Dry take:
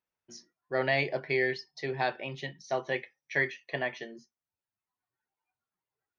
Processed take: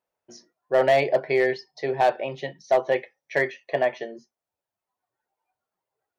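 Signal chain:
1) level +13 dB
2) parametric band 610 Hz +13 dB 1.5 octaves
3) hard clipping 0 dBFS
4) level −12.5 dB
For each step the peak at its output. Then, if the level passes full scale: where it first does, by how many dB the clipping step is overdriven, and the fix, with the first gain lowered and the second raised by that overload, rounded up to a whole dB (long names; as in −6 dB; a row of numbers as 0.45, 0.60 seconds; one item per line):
−2.0, +4.5, 0.0, −12.5 dBFS
step 2, 4.5 dB
step 1 +8 dB, step 4 −7.5 dB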